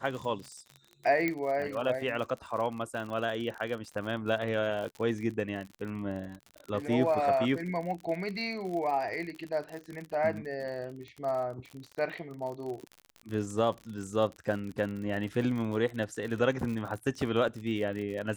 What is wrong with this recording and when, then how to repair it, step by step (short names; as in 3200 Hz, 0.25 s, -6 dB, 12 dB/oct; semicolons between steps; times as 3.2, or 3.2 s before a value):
crackle 56/s -36 dBFS
1.28 pop -17 dBFS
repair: de-click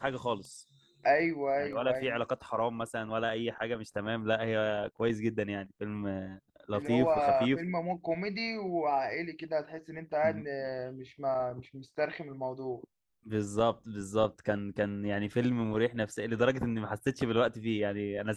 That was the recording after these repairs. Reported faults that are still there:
1.28 pop